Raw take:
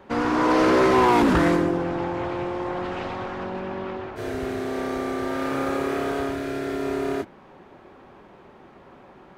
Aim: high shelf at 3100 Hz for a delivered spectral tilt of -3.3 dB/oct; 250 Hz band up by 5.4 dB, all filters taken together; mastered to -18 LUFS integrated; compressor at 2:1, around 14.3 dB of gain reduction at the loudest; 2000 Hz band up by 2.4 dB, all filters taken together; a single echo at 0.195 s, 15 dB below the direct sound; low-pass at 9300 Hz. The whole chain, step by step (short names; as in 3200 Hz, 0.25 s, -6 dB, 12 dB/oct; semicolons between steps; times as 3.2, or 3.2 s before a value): LPF 9300 Hz; bell 250 Hz +7 dB; bell 2000 Hz +5.5 dB; high shelf 3100 Hz -8 dB; compressor 2:1, threshold -38 dBFS; echo 0.195 s -15 dB; gain +14 dB